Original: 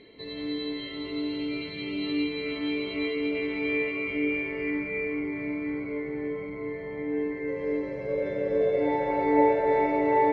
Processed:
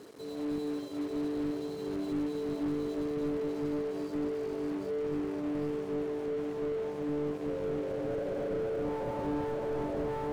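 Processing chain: bass shelf 250 Hz -5 dB; on a send: echo that smears into a reverb 599 ms, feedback 45%, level -8 dB; on the sum: compression 5:1, threshold -29 dBFS, peak gain reduction 10.5 dB; Chebyshev shaper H 6 -24 dB, 7 -35 dB, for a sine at -20 dBFS; reverse; upward compressor, threshold -42 dBFS; reverse; Butterworth band-stop 2.1 kHz, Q 0.58; companded quantiser 4-bit; high-pass 140 Hz 6 dB/octave; peaking EQ 2.8 kHz -7 dB 1.7 oct; slew-rate limiter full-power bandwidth 9.2 Hz; trim +3 dB

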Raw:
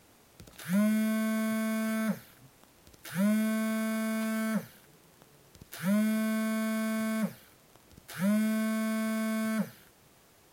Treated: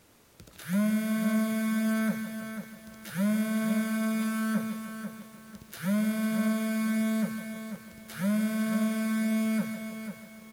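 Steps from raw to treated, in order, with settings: peaking EQ 770 Hz -4.5 dB 0.27 oct; feedback delay 155 ms, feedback 60%, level -11 dB; bit-crushed delay 495 ms, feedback 35%, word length 9-bit, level -8 dB

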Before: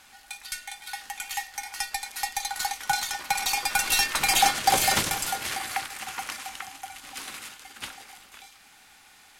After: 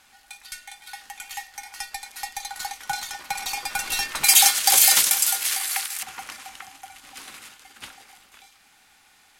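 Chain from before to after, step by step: 4.24–6.03 s: tilt EQ +4.5 dB/octave; trim -3 dB

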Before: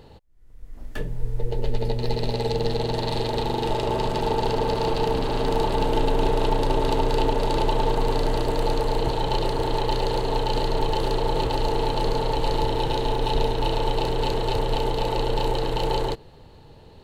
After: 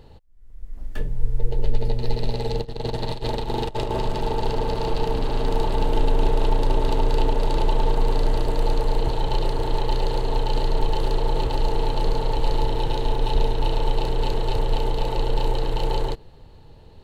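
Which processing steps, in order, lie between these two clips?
bass shelf 73 Hz +9.5 dB; 2.59–4.00 s: compressor with a negative ratio -22 dBFS, ratio -0.5; trim -3 dB

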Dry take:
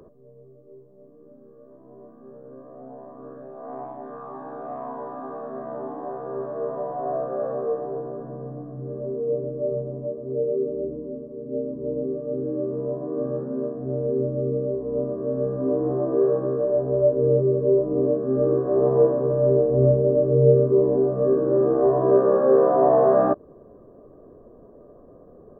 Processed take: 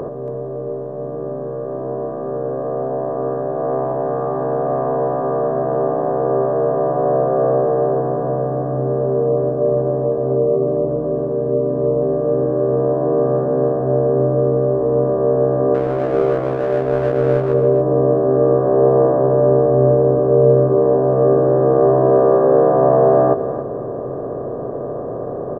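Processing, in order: spectral levelling over time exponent 0.4; 15.74–17.54 s: power-law waveshaper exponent 1.4; delay 279 ms -11 dB

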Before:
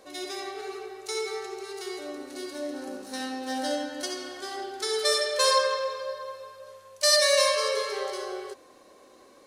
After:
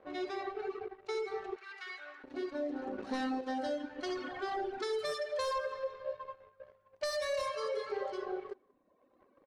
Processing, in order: 4.06–5.07 s: jump at every zero crossing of -37 dBFS; reverb removal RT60 1.6 s; 2.98–3.41 s: waveshaping leveller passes 2; treble shelf 5.6 kHz -6 dB; waveshaping leveller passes 2; level-controlled noise filter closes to 2.3 kHz, open at -17 dBFS; 1.56–2.24 s: resonant high-pass 1.6 kHz, resonance Q 2.1; compression 4:1, threshold -28 dBFS, peak gain reduction 9.5 dB; treble shelf 2.6 kHz -10.5 dB; echo from a far wall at 31 m, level -27 dB; trim -4.5 dB

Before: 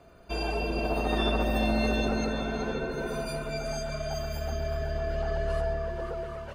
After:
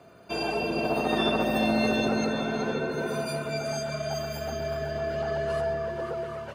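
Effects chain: high-pass 97 Hz 24 dB/octave; endings held to a fixed fall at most 200 dB/s; trim +3 dB

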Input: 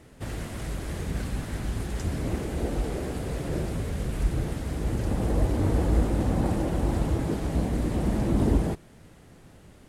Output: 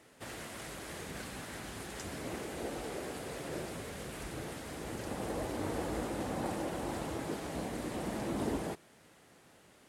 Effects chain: high-pass 610 Hz 6 dB/octave; trim -2.5 dB

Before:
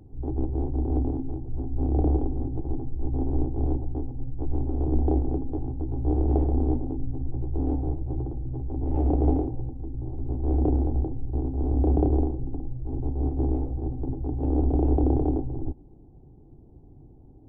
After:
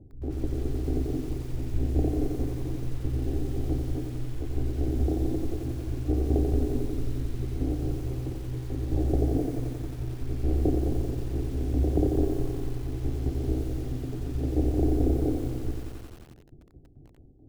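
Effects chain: steep low-pass 710 Hz 48 dB/octave; tremolo saw down 4.6 Hz, depth 70%; bit-crushed delay 89 ms, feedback 80%, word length 8-bit, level -5.5 dB

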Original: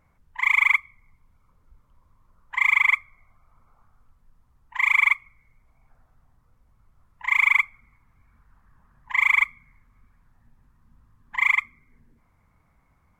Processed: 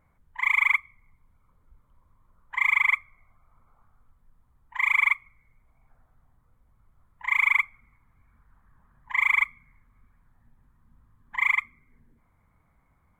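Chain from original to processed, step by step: peaking EQ 5.3 kHz -8.5 dB 0.77 oct; band-stop 2.7 kHz, Q 11; trim -2 dB

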